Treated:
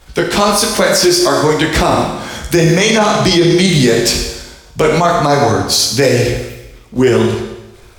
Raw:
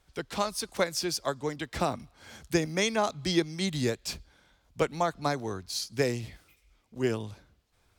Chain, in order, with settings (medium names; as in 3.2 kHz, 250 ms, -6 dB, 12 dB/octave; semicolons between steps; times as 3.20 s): chorus voices 4, 1.2 Hz, delay 17 ms, depth 3 ms; in parallel at -0.5 dB: level held to a coarse grid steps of 10 dB; on the sum: Schroeder reverb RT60 0.99 s, combs from 25 ms, DRR 5 dB; loudness maximiser +23 dB; trim -1 dB